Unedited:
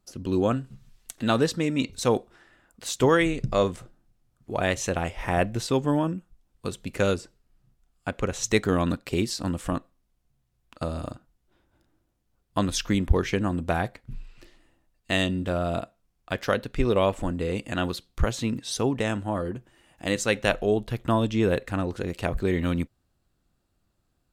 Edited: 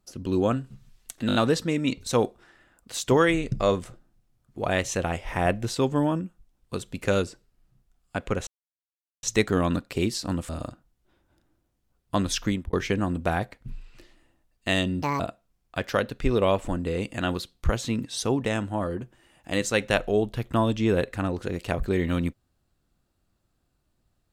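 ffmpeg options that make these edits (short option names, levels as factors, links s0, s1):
-filter_complex "[0:a]asplit=10[s0][s1][s2][s3][s4][s5][s6][s7][s8][s9];[s0]atrim=end=1.292[s10];[s1]atrim=start=1.268:end=1.292[s11];[s2]atrim=start=1.268:end=1.292[s12];[s3]atrim=start=1.268:end=1.292[s13];[s4]atrim=start=1.268:end=8.39,asetpts=PTS-STARTPTS,afade=t=out:st=7.118:d=0.004:c=hsin,apad=pad_dur=0.76[s14];[s5]atrim=start=8.39:end=9.652,asetpts=PTS-STARTPTS,afade=t=in:d=0.004:c=hsin[s15];[s6]atrim=start=10.918:end=13.16,asetpts=PTS-STARTPTS,afade=t=out:st=1.962:d=0.28[s16];[s7]atrim=start=13.16:end=15.454,asetpts=PTS-STARTPTS,afade=t=in:d=0.004:c=hsin[s17];[s8]atrim=start=15.45:end=15.74,asetpts=PTS-STARTPTS,asetrate=71883,aresample=44100,atrim=end_sample=7846,asetpts=PTS-STARTPTS[s18];[s9]atrim=start=15.736[s19];[s10][s11]acrossfade=d=0.004:c1=hsin:c2=hsin[s20];[s20][s12]acrossfade=d=0.004:c1=hsin:c2=hsin[s21];[s21][s13]acrossfade=d=0.004:c1=hsin:c2=hsin[s22];[s14][s15]concat=n=2:v=0:a=1[s23];[s22][s23]acrossfade=d=0.004:c1=hsin:c2=hsin[s24];[s16][s17]concat=n=2:v=0:a=1[s25];[s24][s25]acrossfade=d=0.004:c1=hsin:c2=hsin[s26];[s26][s18]acrossfade=d=0.004:c1=hsin:c2=hsin[s27];[s27][s19]acrossfade=d=0.004:c1=hsin:c2=hsin"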